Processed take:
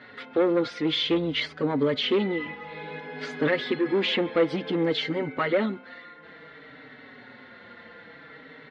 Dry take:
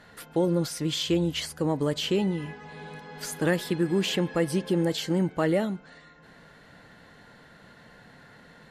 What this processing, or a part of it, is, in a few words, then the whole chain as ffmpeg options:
barber-pole flanger into a guitar amplifier: -filter_complex "[0:a]asplit=2[link_01][link_02];[link_02]adelay=4.9,afreqshift=-0.56[link_03];[link_01][link_03]amix=inputs=2:normalize=1,asoftclip=type=tanh:threshold=-23.5dB,highpass=110,equalizer=frequency=180:width_type=q:width=4:gain=-9,equalizer=frequency=260:width_type=q:width=4:gain=9,equalizer=frequency=470:width_type=q:width=4:gain=7,equalizer=frequency=1300:width_type=q:width=4:gain=5,equalizer=frequency=2100:width_type=q:width=4:gain=10,equalizer=frequency=3600:width_type=q:width=4:gain=5,lowpass=frequency=4100:width=0.5412,lowpass=frequency=4100:width=1.3066,volume=4.5dB"

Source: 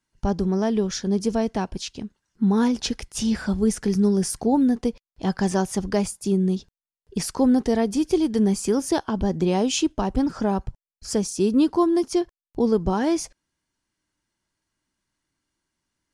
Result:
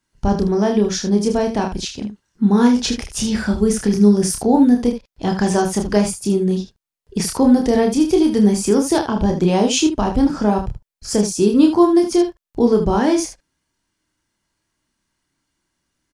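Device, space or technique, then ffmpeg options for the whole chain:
slapback doubling: -filter_complex "[0:a]asplit=3[link_01][link_02][link_03];[link_02]adelay=29,volume=-4dB[link_04];[link_03]adelay=77,volume=-9dB[link_05];[link_01][link_04][link_05]amix=inputs=3:normalize=0,volume=4.5dB"

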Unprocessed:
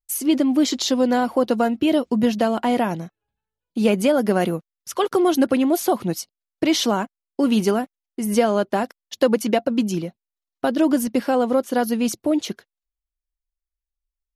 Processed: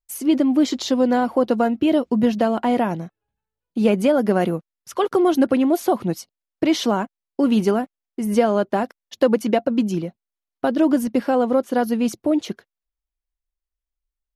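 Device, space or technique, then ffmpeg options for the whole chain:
behind a face mask: -af "highshelf=frequency=2900:gain=-8,volume=1dB"

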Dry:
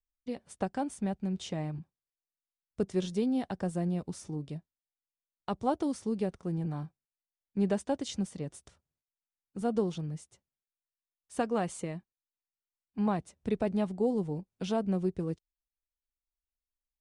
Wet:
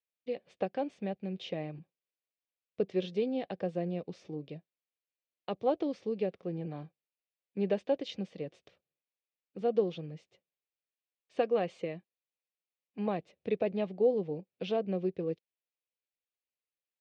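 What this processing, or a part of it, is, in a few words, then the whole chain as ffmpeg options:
kitchen radio: -af "highpass=210,equalizer=frequency=240:width_type=q:width=4:gain=-6,equalizer=frequency=510:width_type=q:width=4:gain=7,equalizer=frequency=940:width_type=q:width=4:gain=-9,equalizer=frequency=1400:width_type=q:width=4:gain=-8,equalizer=frequency=2500:width_type=q:width=4:gain=5,lowpass=frequency=4100:width=0.5412,lowpass=frequency=4100:width=1.3066"

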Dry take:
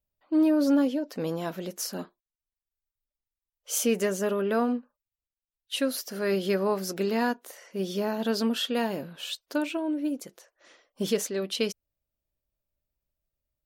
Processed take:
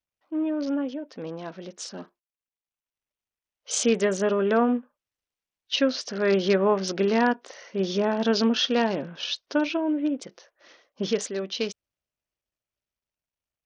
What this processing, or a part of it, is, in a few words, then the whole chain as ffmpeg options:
Bluetooth headset: -af "highpass=frequency=110:poles=1,dynaudnorm=framelen=570:gausssize=11:maxgain=10dB,aresample=16000,aresample=44100,volume=-4.5dB" -ar 48000 -c:a sbc -b:a 64k

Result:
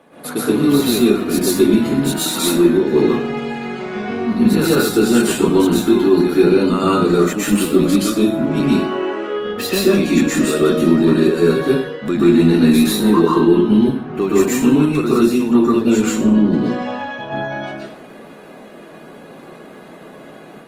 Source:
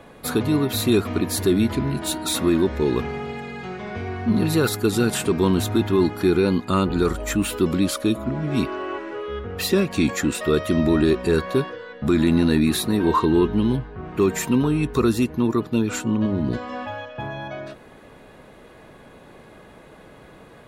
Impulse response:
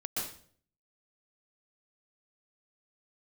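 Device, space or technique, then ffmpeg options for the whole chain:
far-field microphone of a smart speaker: -filter_complex "[1:a]atrim=start_sample=2205[link_01];[0:a][link_01]afir=irnorm=-1:irlink=0,highpass=frequency=160:width=0.5412,highpass=frequency=160:width=1.3066,dynaudnorm=framelen=100:gausssize=3:maxgain=4dB" -ar 48000 -c:a libopus -b:a 24k

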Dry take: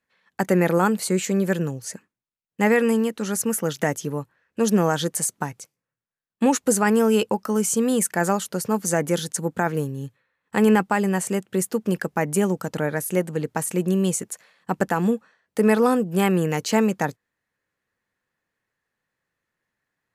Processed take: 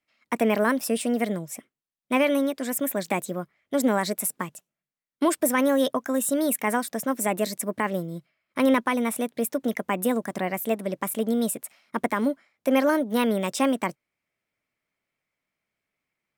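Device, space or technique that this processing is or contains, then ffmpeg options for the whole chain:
nightcore: -af "asetrate=54243,aresample=44100,volume=-3dB"

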